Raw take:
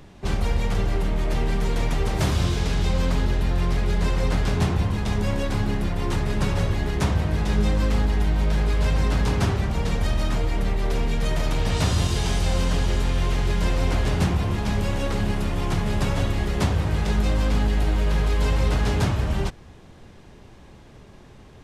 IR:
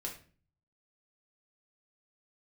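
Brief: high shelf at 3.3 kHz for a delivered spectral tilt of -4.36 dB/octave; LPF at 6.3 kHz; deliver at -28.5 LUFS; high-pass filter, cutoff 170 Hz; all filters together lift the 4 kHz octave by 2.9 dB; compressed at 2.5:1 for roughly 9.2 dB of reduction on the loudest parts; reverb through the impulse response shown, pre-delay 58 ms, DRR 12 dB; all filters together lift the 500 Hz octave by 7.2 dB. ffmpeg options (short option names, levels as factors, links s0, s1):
-filter_complex "[0:a]highpass=170,lowpass=6300,equalizer=f=500:t=o:g=9,highshelf=f=3300:g=-5.5,equalizer=f=4000:t=o:g=8,acompressor=threshold=0.0224:ratio=2.5,asplit=2[s0][s1];[1:a]atrim=start_sample=2205,adelay=58[s2];[s1][s2]afir=irnorm=-1:irlink=0,volume=0.266[s3];[s0][s3]amix=inputs=2:normalize=0,volume=1.58"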